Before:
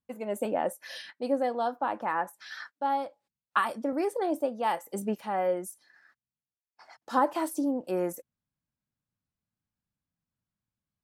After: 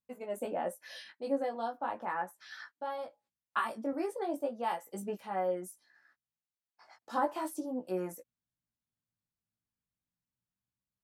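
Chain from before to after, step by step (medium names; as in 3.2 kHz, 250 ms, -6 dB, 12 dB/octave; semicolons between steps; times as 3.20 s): chorus 0.38 Hz, delay 16 ms, depth 2.1 ms; trim -3 dB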